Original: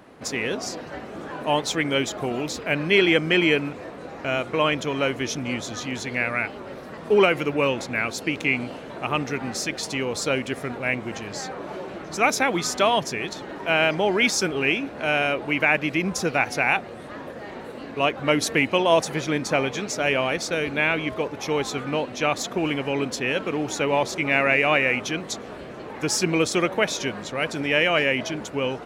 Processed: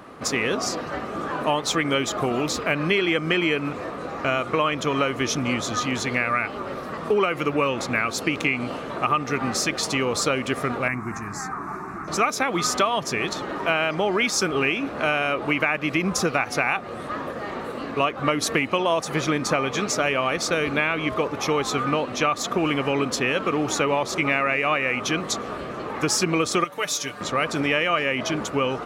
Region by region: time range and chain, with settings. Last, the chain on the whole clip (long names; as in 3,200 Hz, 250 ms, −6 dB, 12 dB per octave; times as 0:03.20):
0:10.88–0:12.08: parametric band 4,200 Hz −8.5 dB 0.62 octaves + phaser with its sweep stopped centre 1,300 Hz, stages 4
0:26.64–0:27.21: first-order pre-emphasis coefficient 0.8 + comb filter 6.8 ms, depth 79%
whole clip: parametric band 1,200 Hz +11.5 dB 0.23 octaves; downward compressor, threshold −23 dBFS; level +4.5 dB